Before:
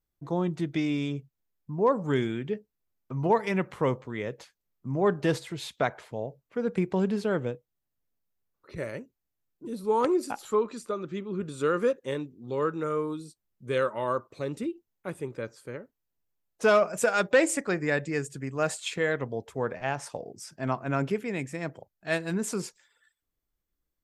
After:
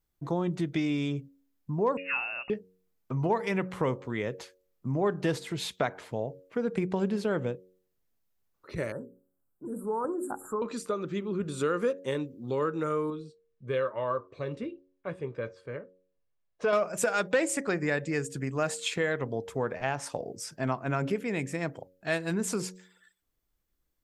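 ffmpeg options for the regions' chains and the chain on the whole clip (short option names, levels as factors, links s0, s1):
-filter_complex "[0:a]asettb=1/sr,asplit=3[s0][s1][s2];[s0]atrim=end=1.974[s3];[s1]atrim=start=1.97:end=2.5,asetpts=PTS-STARTPTS,afade=t=in:d=0.004:c=qsin,afade=t=out:st=0.526:d=0.004:c=qsin,highpass=480,lowpass=f=2600:t=q:w=0.5098,lowpass=f=2600:t=q:w=0.6013,lowpass=f=2600:t=q:w=0.9,lowpass=f=2600:t=q:w=2.563,afreqshift=-3000[s4];[s2]atrim=start=2.496[s5];[s3][s4]acrossfade=d=0.004:c1=hsin:c2=qsin[s6];[s6][s5]acrossfade=d=0.004:c1=qsin:c2=hsin,asettb=1/sr,asplit=3[s7][s8][s9];[s7]atrim=end=8.924[s10];[s8]atrim=start=8.92:end=10.62,asetpts=PTS-STARTPTS,afade=t=in:d=0.004:c=qsin,afade=t=out:st=1.696:d=0.004:c=qsin,bandreject=f=60:t=h:w=6,bandreject=f=120:t=h:w=6,bandreject=f=180:t=h:w=6,bandreject=f=240:t=h:w=6,bandreject=f=300:t=h:w=6,bandreject=f=360:t=h:w=6,bandreject=f=420:t=h:w=6,bandreject=f=480:t=h:w=6,acompressor=threshold=0.00794:ratio=1.5:attack=3.2:release=140:knee=1:detection=peak,asuperstop=centerf=3600:order=20:qfactor=0.61[s11];[s9]atrim=start=10.616[s12];[s10][s11]acrossfade=d=0.004:c1=hsin:c2=qsin[s13];[s13][s12]acrossfade=d=0.004:c1=qsin:c2=hsin,asettb=1/sr,asplit=3[s14][s15][s16];[s14]atrim=end=13.104[s17];[s15]atrim=start=13.1:end=16.73,asetpts=PTS-STARTPTS,afade=t=in:d=0.004:c=qsin,afade=t=out:st=3.626:d=0.004:c=qsin,lowpass=3400,flanger=delay=6.4:depth=2:regen=-69:speed=1.1:shape=triangular,aecho=1:1:1.8:0.34,atrim=end_sample=160083[s18];[s16]atrim=start=16.726[s19];[s17][s18]acrossfade=d=0.004:c1=hsin:c2=qsin[s20];[s20][s19]acrossfade=d=0.004:c1=qsin:c2=hsin,bandreject=f=92.4:t=h:w=4,bandreject=f=184.8:t=h:w=4,bandreject=f=277.2:t=h:w=4,bandreject=f=369.6:t=h:w=4,bandreject=f=462:t=h:w=4,bandreject=f=554.4:t=h:w=4,acompressor=threshold=0.0224:ratio=2,volume=1.58"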